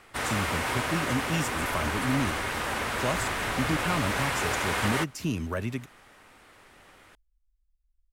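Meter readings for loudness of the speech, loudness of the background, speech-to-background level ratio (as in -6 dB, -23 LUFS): -32.5 LUFS, -29.0 LUFS, -3.5 dB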